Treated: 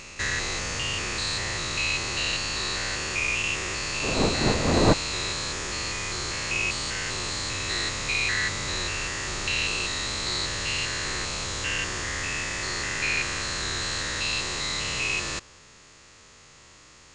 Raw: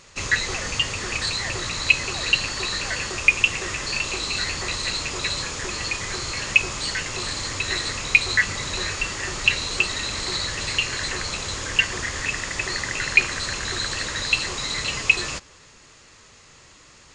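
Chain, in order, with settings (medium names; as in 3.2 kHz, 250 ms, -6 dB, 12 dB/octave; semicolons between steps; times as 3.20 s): spectrogram pixelated in time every 200 ms; 4.02–4.92 s: wind noise 520 Hz -24 dBFS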